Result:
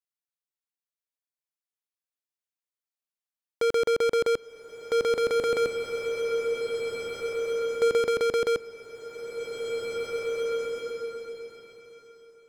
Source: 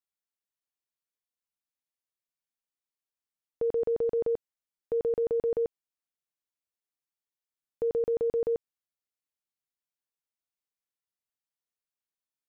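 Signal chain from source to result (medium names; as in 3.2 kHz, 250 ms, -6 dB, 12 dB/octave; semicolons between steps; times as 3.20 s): high-pass 500 Hz 6 dB/octave; waveshaping leveller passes 5; swelling reverb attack 2230 ms, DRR 3.5 dB; trim +5 dB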